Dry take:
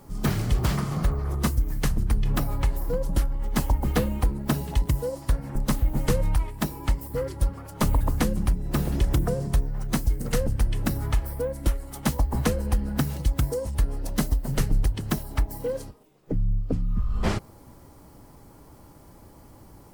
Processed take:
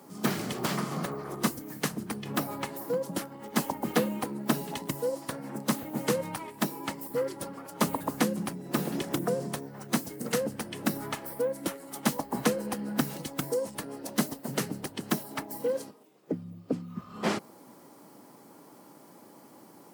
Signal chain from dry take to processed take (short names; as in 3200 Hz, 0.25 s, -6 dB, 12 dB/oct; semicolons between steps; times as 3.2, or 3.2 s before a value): HPF 190 Hz 24 dB/oct